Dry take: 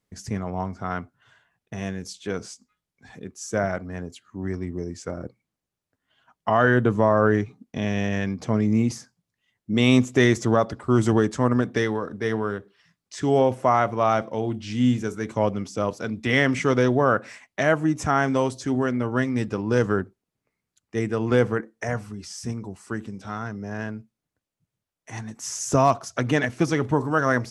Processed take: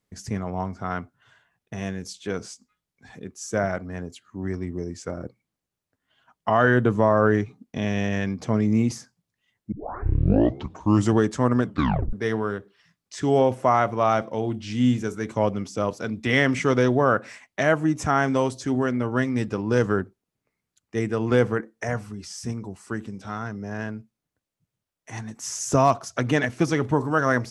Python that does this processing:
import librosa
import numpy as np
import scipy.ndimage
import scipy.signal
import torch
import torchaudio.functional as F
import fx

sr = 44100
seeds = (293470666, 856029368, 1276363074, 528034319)

y = fx.edit(x, sr, fx.tape_start(start_s=9.72, length_s=1.39),
    fx.tape_stop(start_s=11.64, length_s=0.49), tone=tone)